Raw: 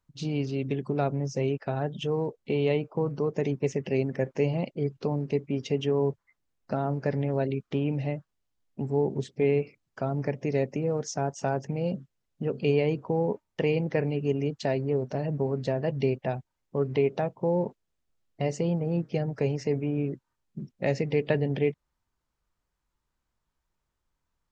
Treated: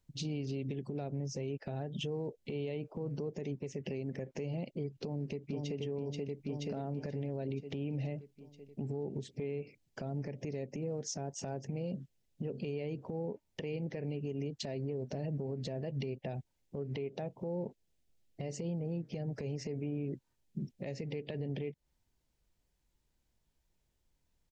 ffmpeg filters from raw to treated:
ffmpeg -i in.wav -filter_complex "[0:a]asplit=2[link_01][link_02];[link_02]afade=type=in:start_time=4.93:duration=0.01,afade=type=out:start_time=5.81:duration=0.01,aecho=0:1:480|960|1440|1920|2400|2880|3360|3840:0.668344|0.367589|0.202174|0.111196|0.0611576|0.0336367|0.0185002|0.0101751[link_03];[link_01][link_03]amix=inputs=2:normalize=0,equalizer=frequency=1200:width_type=o:width=0.92:gain=-12.5,acompressor=threshold=-33dB:ratio=6,alimiter=level_in=8.5dB:limit=-24dB:level=0:latency=1:release=125,volume=-8.5dB,volume=3.5dB" out.wav

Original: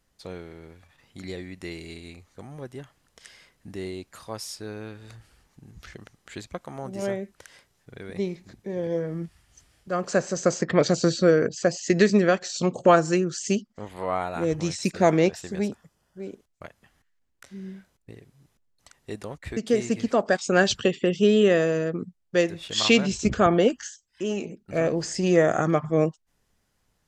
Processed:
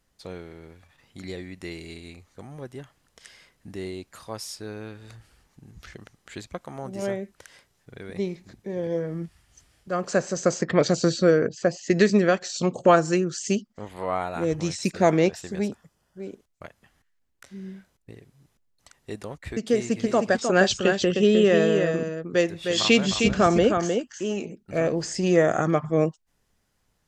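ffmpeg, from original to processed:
ffmpeg -i in.wav -filter_complex "[0:a]asettb=1/sr,asplit=3[link_01][link_02][link_03];[link_01]atrim=end=11.374[link_04];[link_02]atrim=start=11.37:end=11.91,asetpts=PTS-STARTPTS,afade=type=in:duration=0.004:curve=qsin,afade=type=out:start_time=0.536:duration=0.004:curve=qsin,highshelf=frequency=4100:gain=-9[link_05];[link_03]atrim=start=11.906[link_06];[link_04][link_05]acrossfade=duration=0.004:curve1=hsin:curve2=qsin[link_07];[link_07][link_06]acrossfade=duration=0.004:curve1=qsin:curve2=hsin,asettb=1/sr,asplit=3[link_08][link_09][link_10];[link_08]atrim=end=19.734[link_11];[link_09]atrim=start=19.73:end=24.42,asetpts=PTS-STARTPTS,afade=type=in:duration=0.004:curve=qsin,afade=type=out:start_time=4.686:duration=0.004:curve=qsin,aecho=1:1:309:0.531,atrim=end_sample=206829[link_12];[link_10]atrim=start=24.416[link_13];[link_11][link_12]acrossfade=duration=0.004:curve1=hsin:curve2=qsin[link_14];[link_14][link_13]acrossfade=duration=0.004:curve1=qsin:curve2=hsin" out.wav

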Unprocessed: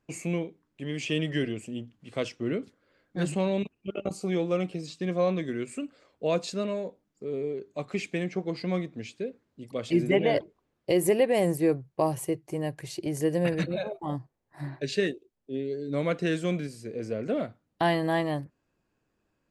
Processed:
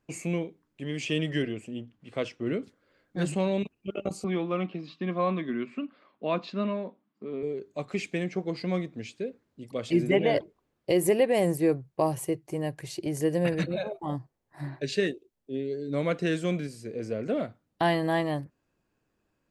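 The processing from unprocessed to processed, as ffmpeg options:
ffmpeg -i in.wav -filter_complex "[0:a]asettb=1/sr,asplit=3[link_01][link_02][link_03];[link_01]atrim=end=1.424[link_04];[link_02]atrim=start=1.42:end=2.47,asetpts=PTS-STARTPTS,afade=type=in:duration=0.004:curve=qsin,afade=type=out:start_time=1.046:duration=0.004:curve=qsin,bass=frequency=250:gain=-2,treble=frequency=4000:gain=-7[link_05];[link_03]atrim=start=2.466[link_06];[link_04][link_05]acrossfade=duration=0.004:curve1=hsin:curve2=qsin[link_07];[link_07][link_06]acrossfade=duration=0.004:curve1=qsin:curve2=hsin,asettb=1/sr,asplit=3[link_08][link_09][link_10];[link_08]atrim=end=4.244[link_11];[link_09]atrim=start=4.24:end=7.43,asetpts=PTS-STARTPTS,afade=type=in:duration=0.004:curve=qsin,afade=type=out:start_time=3.186:duration=0.004:curve=qsin,highpass=190,equalizer=frequency=220:width_type=q:width=4:gain=8,equalizer=frequency=480:width_type=q:width=4:gain=-8,equalizer=frequency=1100:width_type=q:width=4:gain=8,lowpass=frequency=3700:width=0.5412,lowpass=frequency=3700:width=1.3066[link_12];[link_10]atrim=start=7.426[link_13];[link_11][link_12]acrossfade=duration=0.004:curve1=hsin:curve2=qsin[link_14];[link_14][link_13]acrossfade=duration=0.004:curve1=qsin:curve2=hsin" out.wav

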